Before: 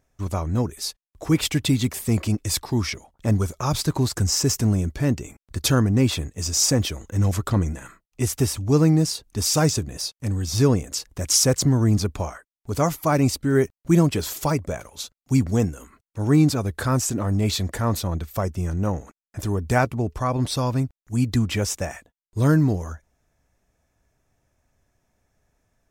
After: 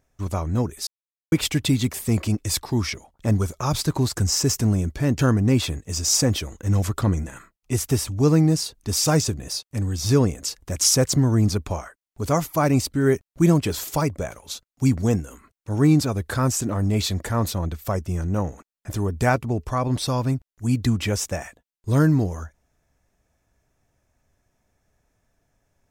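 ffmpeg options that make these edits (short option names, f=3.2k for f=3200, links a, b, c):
-filter_complex "[0:a]asplit=4[a][b][c][d];[a]atrim=end=0.87,asetpts=PTS-STARTPTS,afade=t=out:st=0.866:d=0.004:c=hsin[e];[b]atrim=start=0.87:end=1.32,asetpts=PTS-STARTPTS,volume=0[f];[c]atrim=start=1.32:end=5.192,asetpts=PTS-STARTPTS,afade=t=in:d=0.004:c=hsin[g];[d]atrim=start=5.678[h];[e][f][g]concat=n=3:v=0:a=1[i];[i][h]acrossfade=d=0.004:c1=hsin:c2=hsin"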